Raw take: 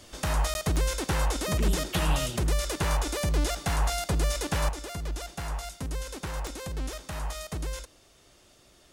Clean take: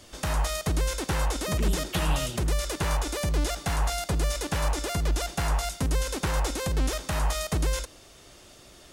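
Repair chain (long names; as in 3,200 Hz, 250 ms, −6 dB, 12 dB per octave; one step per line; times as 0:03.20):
click removal
repair the gap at 0:00.54, 11 ms
level correction +7.5 dB, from 0:04.69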